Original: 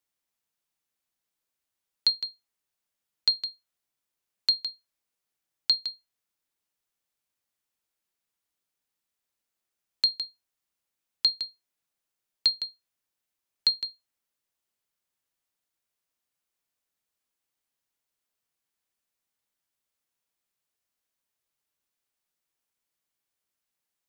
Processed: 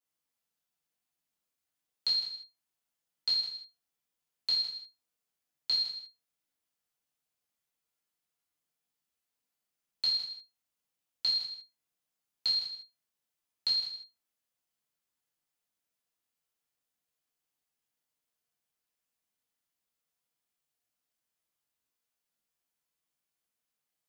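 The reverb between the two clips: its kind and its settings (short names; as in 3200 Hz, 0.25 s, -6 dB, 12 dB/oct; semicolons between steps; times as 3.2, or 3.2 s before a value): non-linear reverb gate 0.22 s falling, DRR -7.5 dB; gain -10.5 dB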